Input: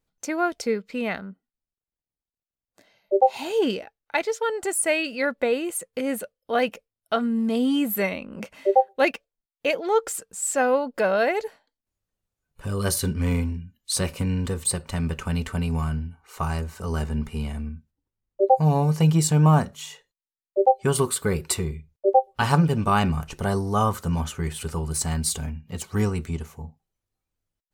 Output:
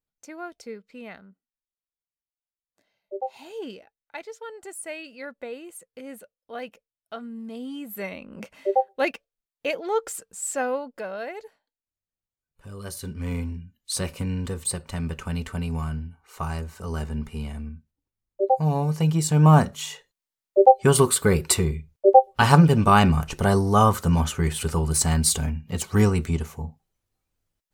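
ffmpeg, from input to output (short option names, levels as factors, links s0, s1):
-af "volume=4.47,afade=t=in:st=7.86:d=0.48:silence=0.334965,afade=t=out:st=10.49:d=0.57:silence=0.375837,afade=t=in:st=12.94:d=0.64:silence=0.354813,afade=t=in:st=19.25:d=0.4:silence=0.421697"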